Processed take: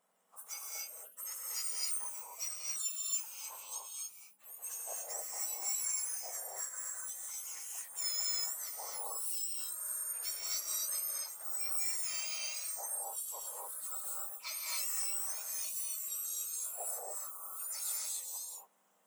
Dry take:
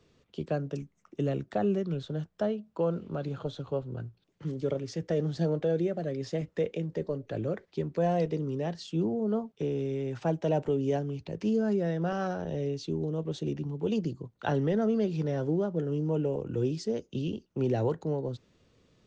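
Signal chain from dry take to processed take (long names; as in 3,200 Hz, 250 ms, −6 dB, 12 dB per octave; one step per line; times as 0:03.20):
frequency axis turned over on the octave scale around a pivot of 1,900 Hz
reverb whose tail is shaped and stops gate 310 ms rising, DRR −3.5 dB
level −6 dB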